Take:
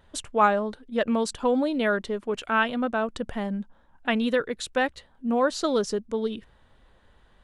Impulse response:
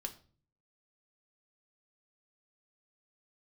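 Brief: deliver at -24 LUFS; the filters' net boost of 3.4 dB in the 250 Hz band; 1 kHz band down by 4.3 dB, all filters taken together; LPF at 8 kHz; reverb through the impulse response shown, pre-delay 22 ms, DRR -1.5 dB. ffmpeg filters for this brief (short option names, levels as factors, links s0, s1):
-filter_complex "[0:a]lowpass=8000,equalizer=f=250:t=o:g=4,equalizer=f=1000:t=o:g=-6,asplit=2[s0][s1];[1:a]atrim=start_sample=2205,adelay=22[s2];[s1][s2]afir=irnorm=-1:irlink=0,volume=1.5[s3];[s0][s3]amix=inputs=2:normalize=0,volume=0.708"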